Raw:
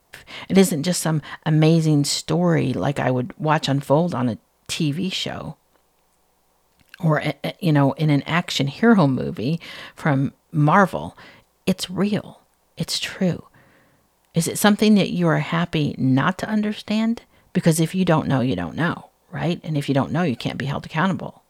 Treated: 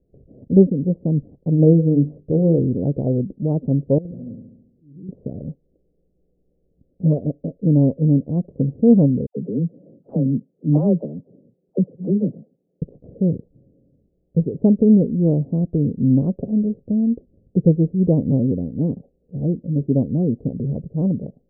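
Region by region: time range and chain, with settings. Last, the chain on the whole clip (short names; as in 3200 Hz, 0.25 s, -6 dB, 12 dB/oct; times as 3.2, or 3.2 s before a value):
1.35–2.59 dynamic EQ 490 Hz, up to +4 dB, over -28 dBFS, Q 2 + notches 50/100/150/200/250/300/350/400/450/500 Hz
3.98–5.09 compressor 12:1, threshold -32 dBFS + auto swell 0.435 s + flutter echo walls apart 11.9 m, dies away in 0.89 s
9.26–12.82 HPF 140 Hz 24 dB/oct + de-esser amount 35% + dispersion lows, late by 0.108 s, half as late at 920 Hz
whole clip: Wiener smoothing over 41 samples; steep low-pass 530 Hz 36 dB/oct; gain +3 dB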